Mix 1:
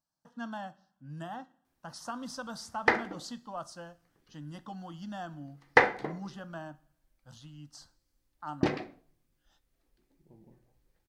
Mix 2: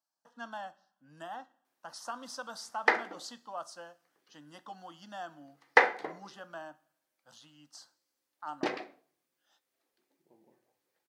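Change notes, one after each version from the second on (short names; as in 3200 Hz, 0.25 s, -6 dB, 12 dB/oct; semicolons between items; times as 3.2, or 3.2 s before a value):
master: add HPF 420 Hz 12 dB/oct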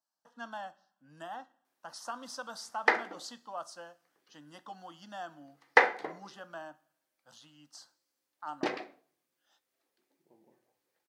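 none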